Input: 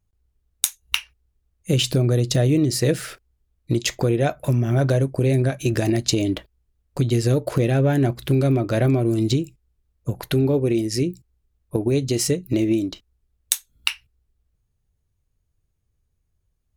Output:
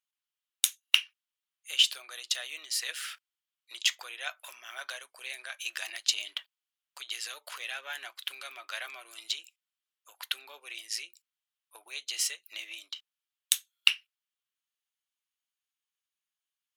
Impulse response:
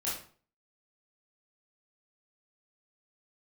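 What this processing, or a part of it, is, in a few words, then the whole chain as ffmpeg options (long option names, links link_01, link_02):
headphones lying on a table: -af "highpass=frequency=1100:width=0.5412,highpass=frequency=1100:width=1.3066,equalizer=frequency=3100:width_type=o:width=0.56:gain=9,volume=-6dB"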